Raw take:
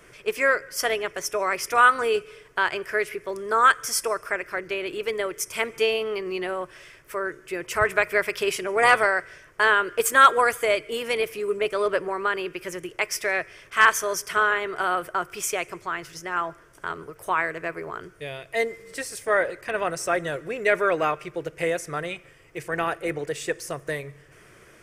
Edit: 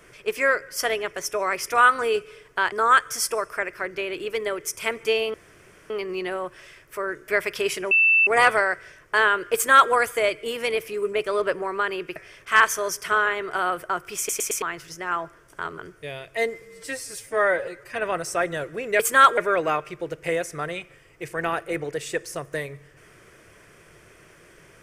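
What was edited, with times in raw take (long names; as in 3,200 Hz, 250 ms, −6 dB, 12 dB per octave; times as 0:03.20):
0:02.72–0:03.45: remove
0:06.07: splice in room tone 0.56 s
0:07.45–0:08.10: remove
0:08.73: insert tone 2,660 Hz −14 dBFS 0.36 s
0:10.00–0:10.38: duplicate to 0:20.72
0:12.62–0:13.41: remove
0:15.43: stutter in place 0.11 s, 4 plays
0:17.03–0:17.96: remove
0:18.80–0:19.71: time-stretch 1.5×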